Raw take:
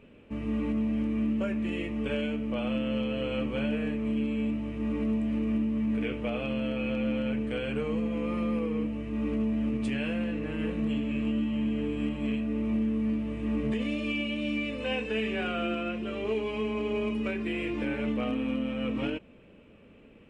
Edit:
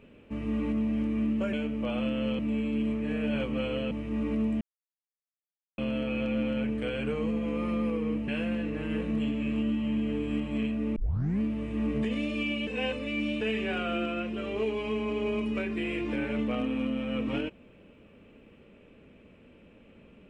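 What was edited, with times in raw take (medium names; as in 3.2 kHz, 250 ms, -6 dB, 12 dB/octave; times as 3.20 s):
1.53–2.22 s: delete
3.08–4.60 s: reverse
5.30–6.47 s: mute
8.97–9.97 s: delete
12.65 s: tape start 0.44 s
14.36–15.10 s: reverse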